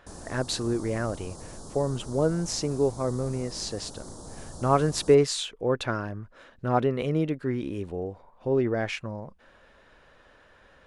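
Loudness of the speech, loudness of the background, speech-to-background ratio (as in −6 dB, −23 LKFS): −28.0 LKFS, −43.5 LKFS, 15.5 dB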